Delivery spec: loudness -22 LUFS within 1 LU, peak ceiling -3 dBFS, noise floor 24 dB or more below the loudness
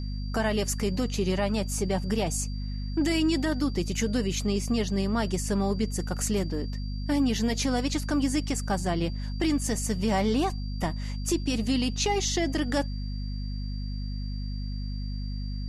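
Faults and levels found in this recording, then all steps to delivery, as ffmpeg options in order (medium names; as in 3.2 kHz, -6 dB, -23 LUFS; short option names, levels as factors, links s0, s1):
hum 50 Hz; highest harmonic 250 Hz; hum level -30 dBFS; steady tone 4.7 kHz; tone level -47 dBFS; loudness -28.5 LUFS; peak level -14.5 dBFS; loudness target -22.0 LUFS
-> -af "bandreject=f=50:t=h:w=6,bandreject=f=100:t=h:w=6,bandreject=f=150:t=h:w=6,bandreject=f=200:t=h:w=6,bandreject=f=250:t=h:w=6"
-af "bandreject=f=4700:w=30"
-af "volume=2.11"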